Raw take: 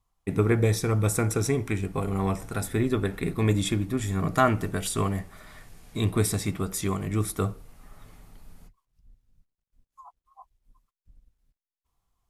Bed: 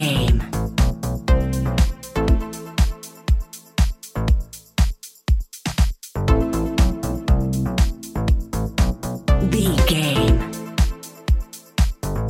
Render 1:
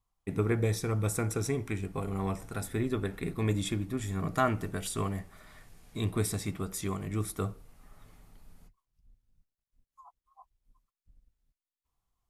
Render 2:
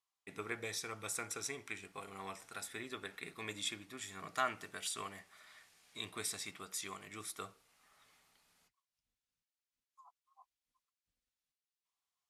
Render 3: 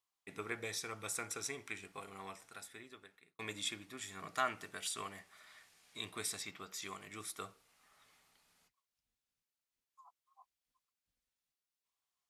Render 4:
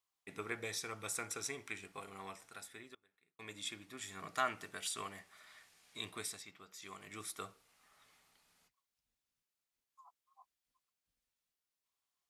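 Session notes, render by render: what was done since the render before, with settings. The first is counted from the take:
gain -6 dB
band-pass 3900 Hz, Q 0.56
1.91–3.39 fade out; 6.42–6.82 bell 9600 Hz -15 dB 0.41 oct
2.95–4.09 fade in, from -23.5 dB; 6.1–7.12 dip -8 dB, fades 0.33 s

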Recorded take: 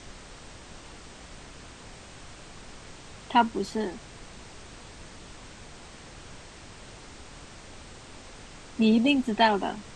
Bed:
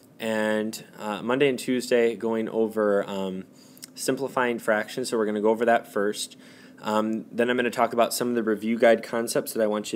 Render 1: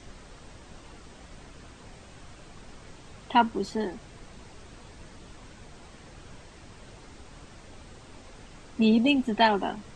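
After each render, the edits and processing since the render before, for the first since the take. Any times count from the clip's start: denoiser 6 dB, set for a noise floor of -47 dBFS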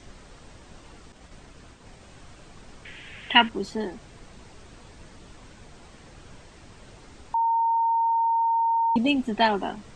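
1.12–2.01 expander -47 dBFS; 2.85–3.49 band shelf 2300 Hz +15 dB 1.2 oct; 7.34–8.96 bleep 917 Hz -19.5 dBFS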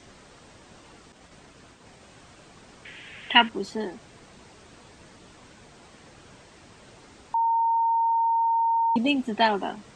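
HPF 150 Hz 6 dB/oct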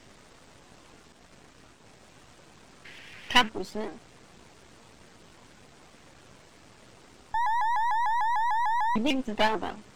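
half-wave gain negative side -12 dB; shaped vibrato saw up 6.7 Hz, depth 160 cents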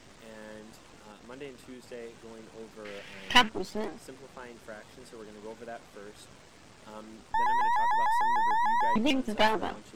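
add bed -22 dB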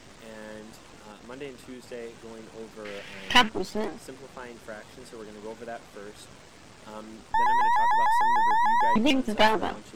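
gain +4 dB; limiter -3 dBFS, peak gain reduction 3 dB

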